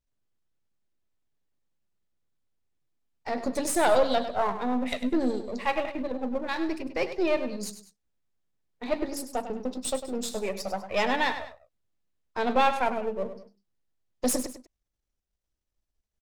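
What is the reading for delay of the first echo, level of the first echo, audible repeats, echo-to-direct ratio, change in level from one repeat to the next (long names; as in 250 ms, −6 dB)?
100 ms, −11.0 dB, 2, −10.5 dB, −8.5 dB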